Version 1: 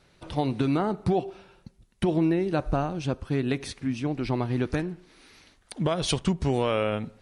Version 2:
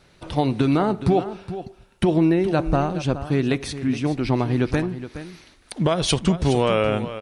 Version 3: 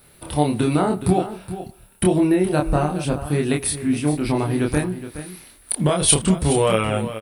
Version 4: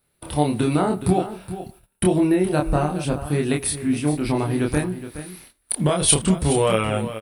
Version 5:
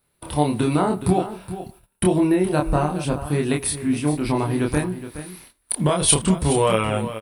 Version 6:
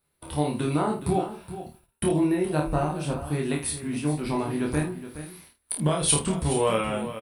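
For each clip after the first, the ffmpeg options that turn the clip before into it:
-af "aecho=1:1:419:0.237,volume=1.88"
-filter_complex "[0:a]aexciter=amount=15.7:drive=3.8:freq=9000,asplit=2[s0][s1];[s1]adelay=27,volume=0.75[s2];[s0][s2]amix=inputs=2:normalize=0,volume=0.891"
-af "agate=range=0.141:threshold=0.00631:ratio=16:detection=peak,volume=0.891"
-af "equalizer=f=1000:w=6:g=5.5"
-af "aecho=1:1:13|52:0.447|0.422,volume=0.473"

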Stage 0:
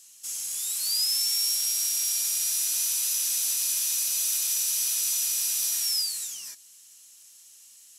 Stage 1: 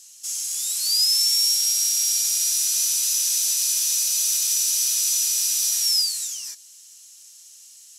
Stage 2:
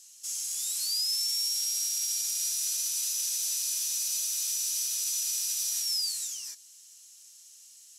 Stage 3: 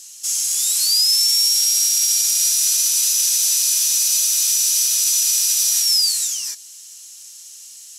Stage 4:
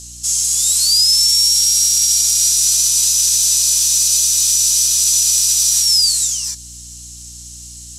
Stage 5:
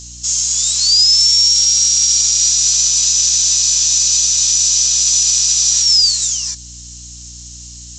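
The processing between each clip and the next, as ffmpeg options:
-af "equalizer=f=5700:t=o:w=1.4:g=7.5"
-af "alimiter=limit=0.168:level=0:latency=1,volume=0.501"
-af "acontrast=22,volume=2.66"
-af "aeval=exprs='val(0)+0.0224*(sin(2*PI*60*n/s)+sin(2*PI*2*60*n/s)/2+sin(2*PI*3*60*n/s)/3+sin(2*PI*4*60*n/s)/4+sin(2*PI*5*60*n/s)/5)':c=same,equalizer=f=250:t=o:w=1:g=-7,equalizer=f=1000:t=o:w=1:g=9,equalizer=f=4000:t=o:w=1:g=7,equalizer=f=8000:t=o:w=1:g=10,volume=0.531"
-af "aresample=16000,aresample=44100,volume=1.33"

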